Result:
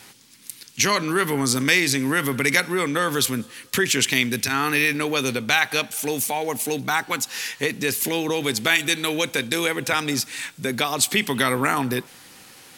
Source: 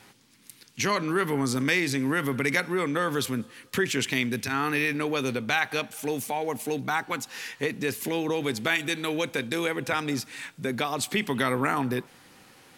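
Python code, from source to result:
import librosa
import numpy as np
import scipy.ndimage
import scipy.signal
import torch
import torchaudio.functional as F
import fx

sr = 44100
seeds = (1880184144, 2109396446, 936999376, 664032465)

y = fx.high_shelf(x, sr, hz=2800.0, db=9.5)
y = F.gain(torch.from_numpy(y), 3.0).numpy()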